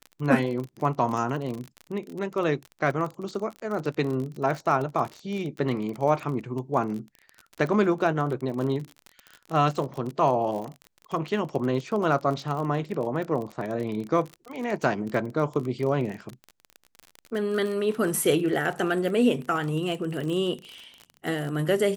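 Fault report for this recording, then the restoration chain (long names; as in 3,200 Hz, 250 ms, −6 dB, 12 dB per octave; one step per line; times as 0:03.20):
surface crackle 35 per second −31 dBFS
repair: click removal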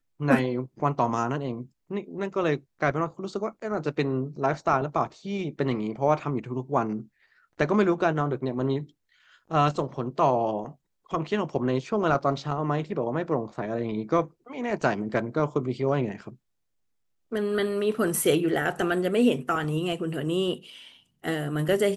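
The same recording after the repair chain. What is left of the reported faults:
none of them is left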